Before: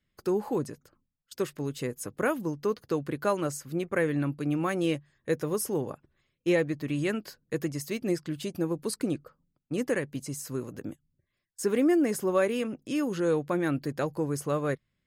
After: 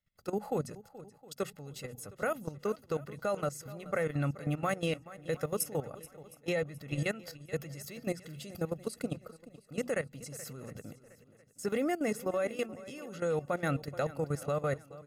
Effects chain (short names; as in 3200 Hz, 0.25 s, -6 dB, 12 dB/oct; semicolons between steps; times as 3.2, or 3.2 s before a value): notches 60/120/180/240 Hz; comb 1.5 ms, depth 65%; level quantiser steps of 15 dB; swung echo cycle 0.713 s, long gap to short 1.5:1, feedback 33%, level -17.5 dB